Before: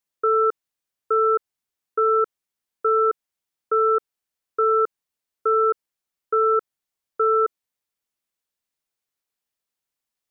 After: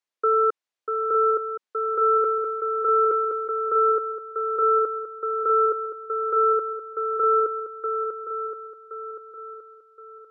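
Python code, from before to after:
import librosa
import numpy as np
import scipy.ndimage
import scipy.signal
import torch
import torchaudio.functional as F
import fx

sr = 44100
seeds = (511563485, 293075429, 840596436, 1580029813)

y = scipy.signal.sosfilt(scipy.signal.butter(2, 350.0, 'highpass', fs=sr, output='sos'), x)
y = fx.air_absorb(y, sr, metres=77.0)
y = fx.echo_swing(y, sr, ms=1071, ratio=1.5, feedback_pct=36, wet_db=-6)
y = fx.sustainer(y, sr, db_per_s=25.0, at=(2.16, 3.79))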